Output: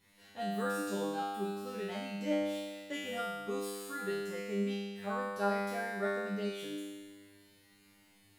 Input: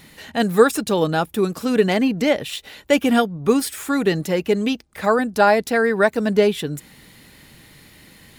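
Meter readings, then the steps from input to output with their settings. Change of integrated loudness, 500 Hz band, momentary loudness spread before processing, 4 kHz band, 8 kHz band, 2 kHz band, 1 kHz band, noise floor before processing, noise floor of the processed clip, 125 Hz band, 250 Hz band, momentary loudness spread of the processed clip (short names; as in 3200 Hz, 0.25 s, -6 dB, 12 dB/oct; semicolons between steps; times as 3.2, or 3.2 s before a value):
-17.5 dB, -18.0 dB, 8 LU, -16.5 dB, -16.5 dB, -17.0 dB, -15.5 dB, -49 dBFS, -65 dBFS, -17.0 dB, -17.5 dB, 7 LU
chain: resonator 100 Hz, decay 1.5 s, harmonics all, mix 100%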